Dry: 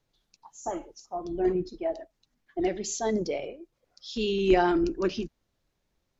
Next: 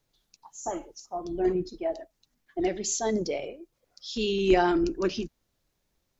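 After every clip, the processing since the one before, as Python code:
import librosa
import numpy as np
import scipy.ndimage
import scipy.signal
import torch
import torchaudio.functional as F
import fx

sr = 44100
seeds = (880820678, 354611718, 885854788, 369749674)

y = fx.high_shelf(x, sr, hz=6500.0, db=8.5)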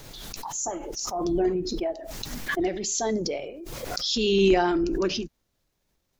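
y = fx.pre_swell(x, sr, db_per_s=25.0)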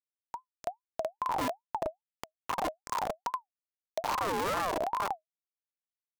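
y = fx.schmitt(x, sr, flips_db=-20.0)
y = fx.ring_lfo(y, sr, carrier_hz=830.0, swing_pct=25, hz=2.4)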